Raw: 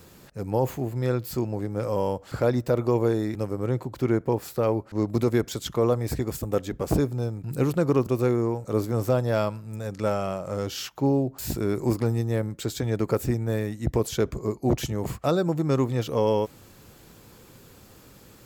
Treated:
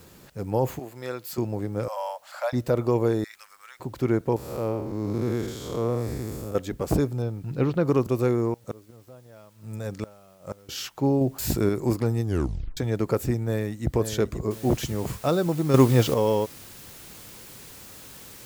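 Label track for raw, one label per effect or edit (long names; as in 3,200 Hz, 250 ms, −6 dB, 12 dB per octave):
0.790000	1.380000	high-pass filter 820 Hz 6 dB per octave
1.880000	2.530000	Butterworth high-pass 570 Hz 96 dB per octave
3.240000	3.800000	high-pass filter 1,400 Hz 24 dB per octave
4.360000	6.550000	spectrum smeared in time width 221 ms
7.220000	7.860000	low-pass filter 4,500 Hz 24 dB per octave
8.530000	10.690000	gate with flip shuts at −19 dBFS, range −25 dB
11.210000	11.690000	clip gain +4 dB
12.240000	12.240000	tape stop 0.53 s
13.450000	13.910000	delay throw 530 ms, feedback 30%, level −8.5 dB
14.510000	14.510000	noise floor change −65 dB −46 dB
15.740000	16.140000	clip gain +7.5 dB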